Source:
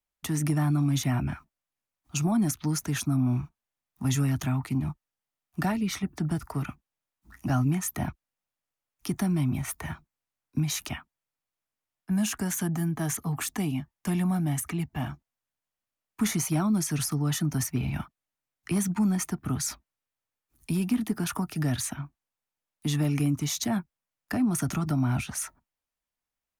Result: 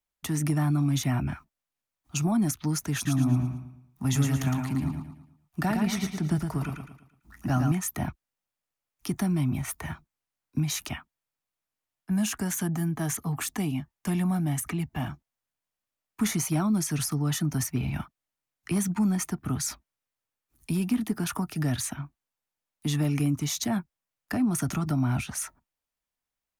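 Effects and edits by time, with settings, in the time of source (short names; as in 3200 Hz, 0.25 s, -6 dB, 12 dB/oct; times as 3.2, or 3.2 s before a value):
2.94–7.72 feedback echo 0.112 s, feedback 39%, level -5 dB
14.66–15.09 three-band squash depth 40%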